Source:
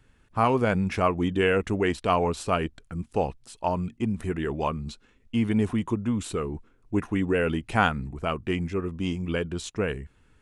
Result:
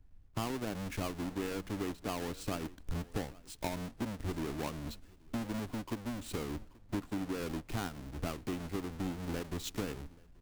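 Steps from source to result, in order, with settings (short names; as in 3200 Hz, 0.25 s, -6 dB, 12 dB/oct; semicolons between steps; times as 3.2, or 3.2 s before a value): half-waves squared off; bell 290 Hz +9 dB 0.38 oct; compressor 16:1, threshold -30 dBFS, peak gain reduction 20 dB; added noise brown -49 dBFS; echo 0.833 s -17.5 dB; three-band expander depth 70%; gain -4.5 dB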